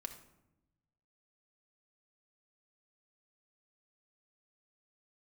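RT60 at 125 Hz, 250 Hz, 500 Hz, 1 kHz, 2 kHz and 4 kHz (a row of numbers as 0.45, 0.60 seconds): 1.6, 1.3, 1.0, 0.80, 0.70, 0.50 seconds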